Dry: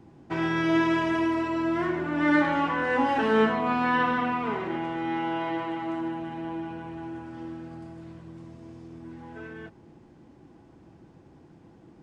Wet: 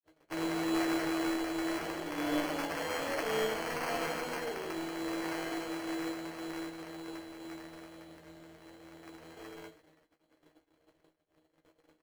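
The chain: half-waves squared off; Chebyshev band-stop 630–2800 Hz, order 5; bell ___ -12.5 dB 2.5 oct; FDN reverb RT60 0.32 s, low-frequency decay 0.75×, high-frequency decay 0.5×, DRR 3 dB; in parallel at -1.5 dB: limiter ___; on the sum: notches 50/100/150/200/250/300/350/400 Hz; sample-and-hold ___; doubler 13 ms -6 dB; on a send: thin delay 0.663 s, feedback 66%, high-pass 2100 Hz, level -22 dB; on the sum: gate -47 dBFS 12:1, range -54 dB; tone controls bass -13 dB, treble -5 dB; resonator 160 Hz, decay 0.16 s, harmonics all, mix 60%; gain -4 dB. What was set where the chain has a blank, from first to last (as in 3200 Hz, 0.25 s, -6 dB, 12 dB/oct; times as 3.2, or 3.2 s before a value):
190 Hz, -22 dBFS, 12×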